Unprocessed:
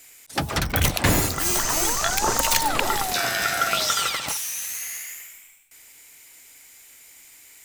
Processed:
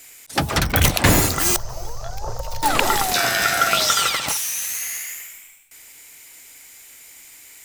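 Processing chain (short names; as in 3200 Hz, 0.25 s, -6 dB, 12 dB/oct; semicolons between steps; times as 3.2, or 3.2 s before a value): 1.56–2.63 EQ curve 120 Hz 0 dB, 260 Hz -28 dB, 530 Hz -6 dB, 1900 Hz -25 dB, 3500 Hz -23 dB, 5200 Hz -16 dB, 8300 Hz -28 dB, 13000 Hz -22 dB; gain +4.5 dB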